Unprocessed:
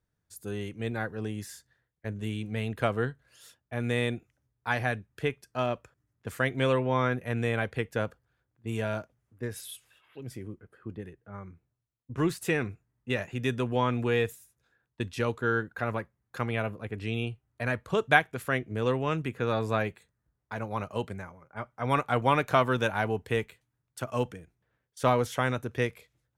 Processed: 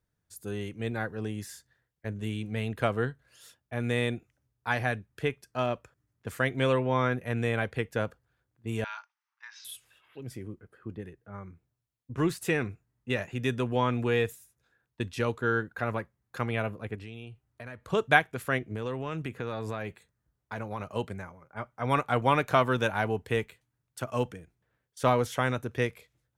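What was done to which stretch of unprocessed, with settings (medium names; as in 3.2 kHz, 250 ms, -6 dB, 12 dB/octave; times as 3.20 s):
8.84–9.65 s: Chebyshev band-pass 870–6100 Hz, order 5
16.95–17.85 s: compression 3:1, threshold -42 dBFS
18.58–20.95 s: compression, threshold -29 dBFS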